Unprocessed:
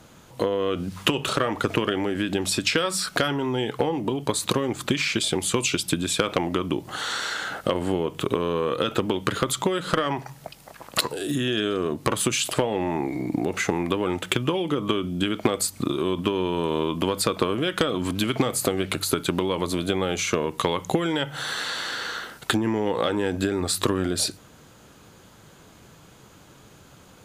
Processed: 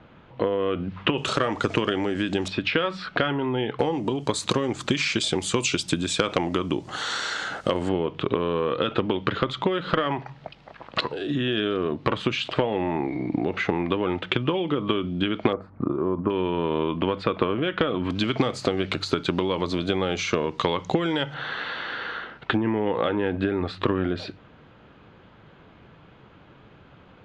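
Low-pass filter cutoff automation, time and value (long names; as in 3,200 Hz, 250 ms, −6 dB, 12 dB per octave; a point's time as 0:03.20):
low-pass filter 24 dB per octave
3,000 Hz
from 0:01.18 7,500 Hz
from 0:02.48 3,300 Hz
from 0:03.79 7,600 Hz
from 0:07.89 3,800 Hz
from 0:15.53 1,400 Hz
from 0:16.30 3,100 Hz
from 0:18.10 5,300 Hz
from 0:21.34 3,100 Hz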